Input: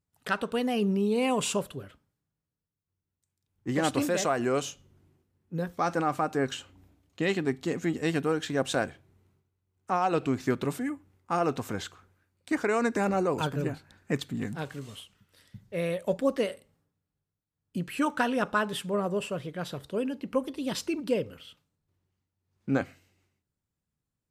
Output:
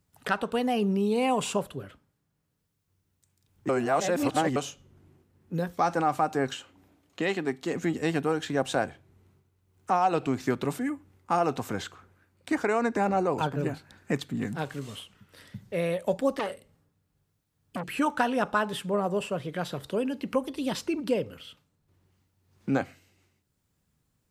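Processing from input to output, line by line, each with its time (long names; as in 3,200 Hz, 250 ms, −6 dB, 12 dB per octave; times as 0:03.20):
0:03.69–0:04.56: reverse
0:06.54–0:07.75: high-pass filter 290 Hz 6 dB per octave
0:12.73–0:13.63: high-shelf EQ 4,400 Hz −8 dB
0:16.39–0:17.89: saturating transformer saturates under 2,100 Hz
0:19.52–0:21.23: one half of a high-frequency compander encoder only
whole clip: dynamic equaliser 800 Hz, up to +6 dB, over −42 dBFS, Q 2.6; multiband upward and downward compressor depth 40%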